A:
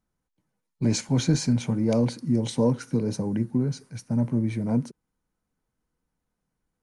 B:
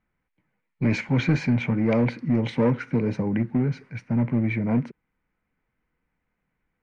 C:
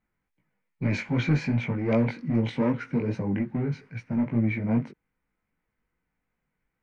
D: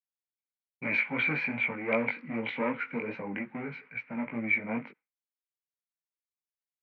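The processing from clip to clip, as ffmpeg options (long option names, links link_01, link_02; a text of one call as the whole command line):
ffmpeg -i in.wav -filter_complex "[0:a]asplit=2[link_01][link_02];[link_02]aeval=exprs='0.0841*(abs(mod(val(0)/0.0841+3,4)-2)-1)':channel_layout=same,volume=-10dB[link_03];[link_01][link_03]amix=inputs=2:normalize=0,lowpass=frequency=2200:width_type=q:width=3.7" out.wav
ffmpeg -i in.wav -af "flanger=delay=17.5:depth=3.7:speed=2.5" out.wav
ffmpeg -i in.wav -af "highpass=370,equalizer=frequency=370:width_type=q:width=4:gain=-8,equalizer=frequency=650:width_type=q:width=4:gain=-3,equalizer=frequency=1300:width_type=q:width=4:gain=3,equalizer=frequency=2300:width_type=q:width=4:gain=9,lowpass=frequency=3300:width=0.5412,lowpass=frequency=3300:width=1.3066,agate=range=-33dB:threshold=-51dB:ratio=3:detection=peak" out.wav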